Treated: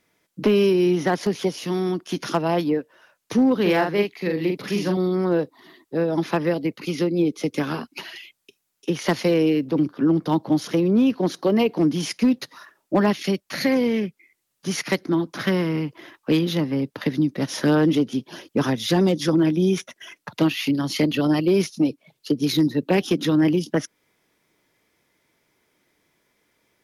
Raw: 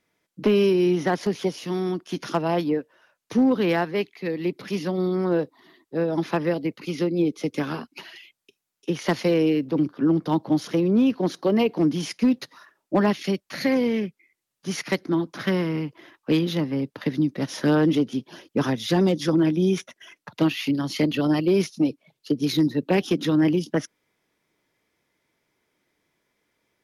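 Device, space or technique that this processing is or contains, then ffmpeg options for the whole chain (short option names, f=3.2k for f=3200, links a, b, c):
parallel compression: -filter_complex "[0:a]highshelf=f=7.7k:g=4,asplit=2[a][b];[b]acompressor=threshold=-32dB:ratio=6,volume=-2dB[c];[a][c]amix=inputs=2:normalize=0,asettb=1/sr,asplit=3[d][e][f];[d]atrim=end=3.614[g];[e]atrim=start=3.61:end=4.97,asetpts=PTS-STARTPTS,afade=t=in:d=0.004:c=qsin,afade=t=out:st=1.356:d=0.004:c=qsin,asplit=2[h][i];[i]adelay=44,volume=-4dB[j];[h][j]amix=inputs=2:normalize=0,atrim=end_sample=59976[k];[f]atrim=start=4.966[l];[g][k]acrossfade=d=0.004:c1=hsin:c2=qsin[m];[m][l]acrossfade=d=0.004:c1=qsin:c2=hsin"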